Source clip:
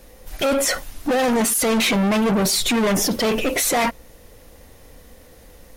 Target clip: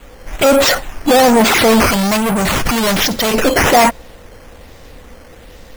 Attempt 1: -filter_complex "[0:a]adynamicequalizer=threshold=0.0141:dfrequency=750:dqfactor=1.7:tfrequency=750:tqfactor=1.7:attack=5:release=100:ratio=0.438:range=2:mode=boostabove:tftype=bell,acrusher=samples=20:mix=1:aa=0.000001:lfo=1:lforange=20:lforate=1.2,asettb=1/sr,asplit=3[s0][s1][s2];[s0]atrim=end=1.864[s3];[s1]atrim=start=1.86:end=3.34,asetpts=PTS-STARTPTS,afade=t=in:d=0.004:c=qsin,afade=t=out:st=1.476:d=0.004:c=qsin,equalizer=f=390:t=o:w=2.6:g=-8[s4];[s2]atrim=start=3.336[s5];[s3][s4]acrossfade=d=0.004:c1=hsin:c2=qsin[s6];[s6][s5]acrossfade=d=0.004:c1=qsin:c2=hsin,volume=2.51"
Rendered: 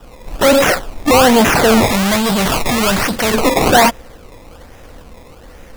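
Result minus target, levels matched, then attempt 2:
decimation with a swept rate: distortion +4 dB
-filter_complex "[0:a]adynamicequalizer=threshold=0.0141:dfrequency=750:dqfactor=1.7:tfrequency=750:tqfactor=1.7:attack=5:release=100:ratio=0.438:range=2:mode=boostabove:tftype=bell,acrusher=samples=8:mix=1:aa=0.000001:lfo=1:lforange=8:lforate=1.2,asettb=1/sr,asplit=3[s0][s1][s2];[s0]atrim=end=1.864[s3];[s1]atrim=start=1.86:end=3.34,asetpts=PTS-STARTPTS,afade=t=in:d=0.004:c=qsin,afade=t=out:st=1.476:d=0.004:c=qsin,equalizer=f=390:t=o:w=2.6:g=-8[s4];[s2]atrim=start=3.336[s5];[s3][s4]acrossfade=d=0.004:c1=hsin:c2=qsin[s6];[s6][s5]acrossfade=d=0.004:c1=qsin:c2=hsin,volume=2.51"

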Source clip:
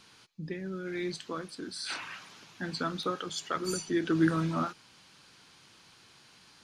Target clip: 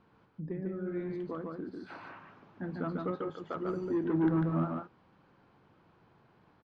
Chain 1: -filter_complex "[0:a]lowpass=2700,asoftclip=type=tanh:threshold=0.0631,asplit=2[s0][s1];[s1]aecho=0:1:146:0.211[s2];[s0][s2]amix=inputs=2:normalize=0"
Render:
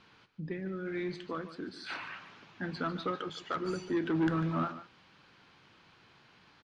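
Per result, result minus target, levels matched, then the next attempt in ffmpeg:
2 kHz band +8.5 dB; echo-to-direct -10.5 dB
-filter_complex "[0:a]lowpass=920,asoftclip=type=tanh:threshold=0.0631,asplit=2[s0][s1];[s1]aecho=0:1:146:0.211[s2];[s0][s2]amix=inputs=2:normalize=0"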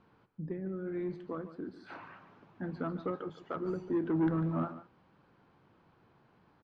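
echo-to-direct -10.5 dB
-filter_complex "[0:a]lowpass=920,asoftclip=type=tanh:threshold=0.0631,asplit=2[s0][s1];[s1]aecho=0:1:146:0.708[s2];[s0][s2]amix=inputs=2:normalize=0"

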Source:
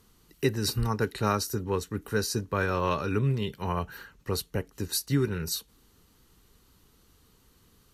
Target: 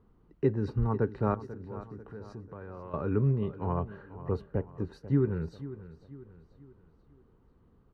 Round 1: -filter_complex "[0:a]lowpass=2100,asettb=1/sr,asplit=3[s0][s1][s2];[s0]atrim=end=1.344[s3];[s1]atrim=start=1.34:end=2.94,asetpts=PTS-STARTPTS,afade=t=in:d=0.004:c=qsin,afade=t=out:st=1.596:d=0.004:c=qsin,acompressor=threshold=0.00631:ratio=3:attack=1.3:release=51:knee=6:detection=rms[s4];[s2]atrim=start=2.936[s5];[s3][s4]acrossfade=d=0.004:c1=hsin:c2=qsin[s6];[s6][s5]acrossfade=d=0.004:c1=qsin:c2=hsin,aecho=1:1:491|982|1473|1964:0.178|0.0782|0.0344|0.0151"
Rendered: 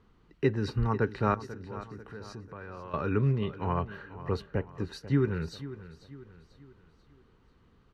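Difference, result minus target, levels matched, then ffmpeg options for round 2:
2 kHz band +8.5 dB
-filter_complex "[0:a]lowpass=910,asettb=1/sr,asplit=3[s0][s1][s2];[s0]atrim=end=1.344[s3];[s1]atrim=start=1.34:end=2.94,asetpts=PTS-STARTPTS,afade=t=in:d=0.004:c=qsin,afade=t=out:st=1.596:d=0.004:c=qsin,acompressor=threshold=0.00631:ratio=3:attack=1.3:release=51:knee=6:detection=rms[s4];[s2]atrim=start=2.936[s5];[s3][s4]acrossfade=d=0.004:c1=hsin:c2=qsin[s6];[s6][s5]acrossfade=d=0.004:c1=qsin:c2=hsin,aecho=1:1:491|982|1473|1964:0.178|0.0782|0.0344|0.0151"

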